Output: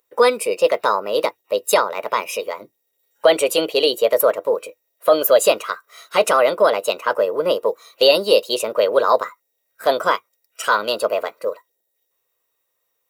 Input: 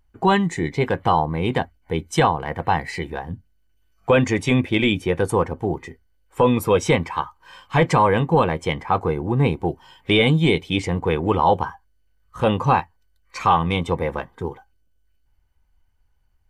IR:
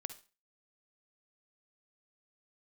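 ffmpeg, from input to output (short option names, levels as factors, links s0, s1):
-af "highpass=f=390:t=q:w=4.1,asetrate=55566,aresample=44100,aemphasis=mode=production:type=75fm,volume=0.75"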